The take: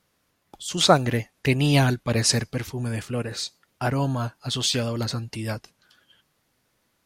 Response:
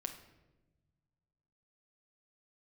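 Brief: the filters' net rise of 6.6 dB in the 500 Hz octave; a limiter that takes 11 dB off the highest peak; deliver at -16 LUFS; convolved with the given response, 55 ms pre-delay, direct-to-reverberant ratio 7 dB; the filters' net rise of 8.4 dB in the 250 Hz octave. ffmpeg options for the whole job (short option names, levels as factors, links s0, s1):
-filter_complex "[0:a]equalizer=f=250:t=o:g=8.5,equalizer=f=500:t=o:g=6,alimiter=limit=0.355:level=0:latency=1,asplit=2[s0][s1];[1:a]atrim=start_sample=2205,adelay=55[s2];[s1][s2]afir=irnorm=-1:irlink=0,volume=0.531[s3];[s0][s3]amix=inputs=2:normalize=0,volume=1.78"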